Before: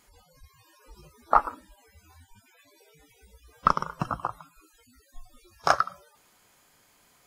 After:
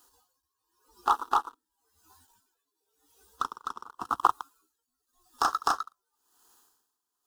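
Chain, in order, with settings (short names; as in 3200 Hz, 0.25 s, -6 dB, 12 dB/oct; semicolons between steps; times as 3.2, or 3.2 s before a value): HPF 360 Hz 6 dB/oct; sample leveller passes 3; in parallel at +1 dB: compressor, threshold -30 dBFS, peak gain reduction 19.5 dB; on the sum: requantised 10-bit, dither none; fixed phaser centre 590 Hz, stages 6; on a send: reverse echo 0.255 s -10.5 dB; on the sum: dB-linear tremolo 0.92 Hz, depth 23 dB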